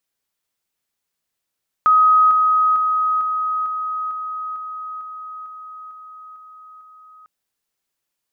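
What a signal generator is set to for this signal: level ladder 1.26 kHz -9.5 dBFS, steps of -3 dB, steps 12, 0.45 s 0.00 s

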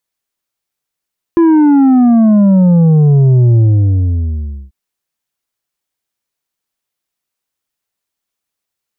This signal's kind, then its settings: sub drop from 340 Hz, over 3.34 s, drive 6 dB, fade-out 1.13 s, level -5.5 dB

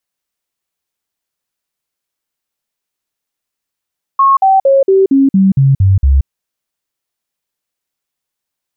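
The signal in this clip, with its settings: stepped sine 1.09 kHz down, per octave 2, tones 9, 0.18 s, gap 0.05 s -5 dBFS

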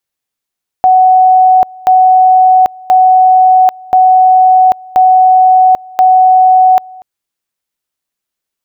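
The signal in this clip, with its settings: two-level tone 745 Hz -2.5 dBFS, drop 25.5 dB, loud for 0.79 s, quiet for 0.24 s, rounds 6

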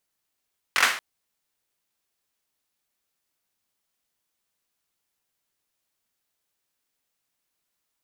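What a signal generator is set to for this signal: hand clap length 0.23 s, bursts 4, apart 22 ms, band 1.6 kHz, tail 0.46 s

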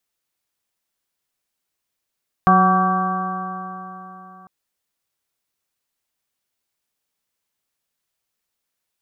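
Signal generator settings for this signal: stretched partials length 2.00 s, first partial 184 Hz, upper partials -10/-15.5/0.5/-16/3/-14.5/-9.5 dB, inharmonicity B 0.0021, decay 3.62 s, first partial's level -15 dB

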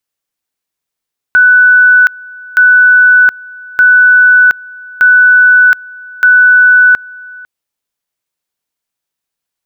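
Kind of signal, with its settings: two-level tone 1.49 kHz -2 dBFS, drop 24.5 dB, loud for 0.72 s, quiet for 0.50 s, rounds 5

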